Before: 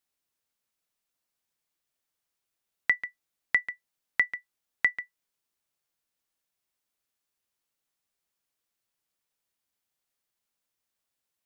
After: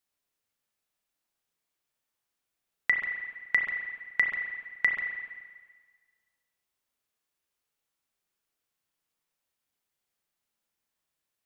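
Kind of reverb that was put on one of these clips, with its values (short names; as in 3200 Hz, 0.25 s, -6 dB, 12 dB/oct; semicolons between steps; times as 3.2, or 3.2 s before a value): spring tank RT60 1.5 s, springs 31/43 ms, chirp 60 ms, DRR 1.5 dB; gain -1 dB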